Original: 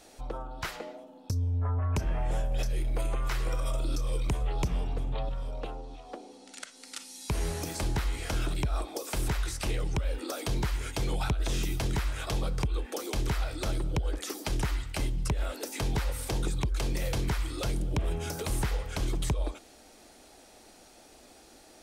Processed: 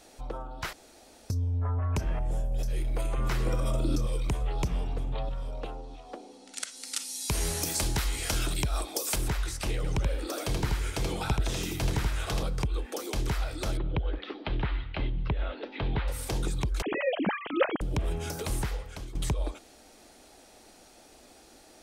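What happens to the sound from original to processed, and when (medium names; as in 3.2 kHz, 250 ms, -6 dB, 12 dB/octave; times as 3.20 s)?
0.73–1.30 s: room tone
2.19–2.68 s: peaking EQ 2 kHz -11.5 dB 2.7 oct
3.18–4.07 s: peaking EQ 210 Hz +10.5 dB 2.3 oct
6.56–9.16 s: treble shelf 3.2 kHz +11 dB
9.76–12.43 s: delay 80 ms -3.5 dB
13.77–16.08 s: steep low-pass 3.8 kHz 48 dB/octave
16.82–17.81 s: formants replaced by sine waves
18.51–19.15 s: fade out, to -15 dB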